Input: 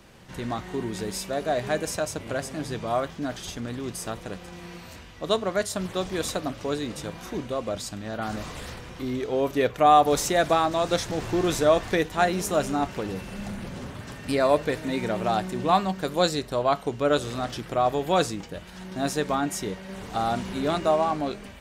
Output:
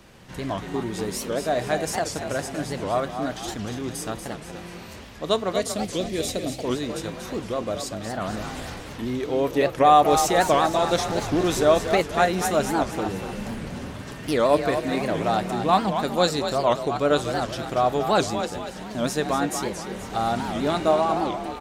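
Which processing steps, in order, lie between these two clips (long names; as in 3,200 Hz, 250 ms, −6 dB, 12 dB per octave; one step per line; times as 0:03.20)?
0:05.54–0:06.66: flat-topped bell 1,100 Hz −12 dB 1.3 octaves
echo with shifted repeats 237 ms, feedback 44%, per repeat +39 Hz, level −8 dB
wow of a warped record 78 rpm, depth 250 cents
level +1.5 dB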